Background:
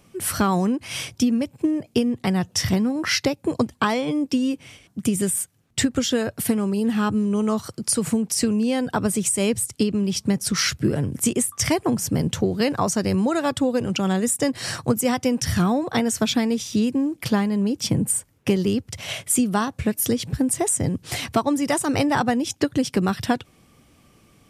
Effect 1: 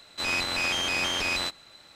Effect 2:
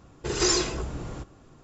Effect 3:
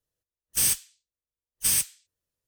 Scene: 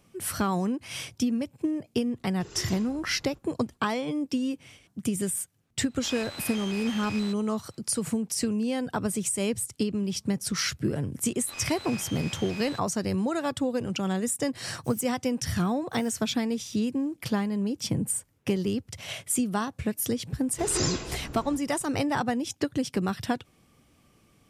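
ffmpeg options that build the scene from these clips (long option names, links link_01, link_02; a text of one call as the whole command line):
ffmpeg -i bed.wav -i cue0.wav -i cue1.wav -i cue2.wav -filter_complex "[2:a]asplit=2[link_01][link_02];[1:a]asplit=2[link_03][link_04];[0:a]volume=-6.5dB[link_05];[3:a]acompressor=threshold=-34dB:ratio=6:attack=3.2:release=140:knee=1:detection=peak[link_06];[link_01]atrim=end=1.63,asetpts=PTS-STARTPTS,volume=-17.5dB,afade=type=in:duration=0.004:curve=hsin,afade=type=out:start_time=1.626:duration=0.004:curve=hsin,adelay=2150[link_07];[link_03]atrim=end=1.95,asetpts=PTS-STARTPTS,volume=-11.5dB,afade=type=in:duration=0.004:curve=hsin,afade=type=out:start_time=1.946:duration=0.004:curve=hsin,adelay=5830[link_08];[link_04]atrim=end=1.95,asetpts=PTS-STARTPTS,volume=-13.5dB,afade=type=in:duration=0.004:curve=hsin,afade=type=out:start_time=1.946:duration=0.004:curve=hsin,adelay=11290[link_09];[link_06]atrim=end=2.47,asetpts=PTS-STARTPTS,volume=-17dB,afade=type=in:duration=0.004:curve=hsin,afade=type=out:start_time=2.466:duration=0.004:curve=hsin,adelay=14300[link_10];[link_02]atrim=end=1.63,asetpts=PTS-STARTPTS,volume=-6dB,afade=type=in:duration=0.004:curve=hsin,afade=type=out:start_time=1.626:duration=0.004:curve=hsin,adelay=20340[link_11];[link_05][link_07][link_08][link_09][link_10][link_11]amix=inputs=6:normalize=0" out.wav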